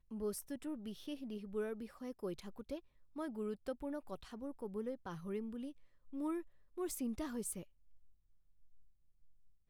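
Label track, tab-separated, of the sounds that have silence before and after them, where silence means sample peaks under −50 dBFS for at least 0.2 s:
3.160000	5.720000	sound
6.080000	6.420000	sound
6.770000	7.630000	sound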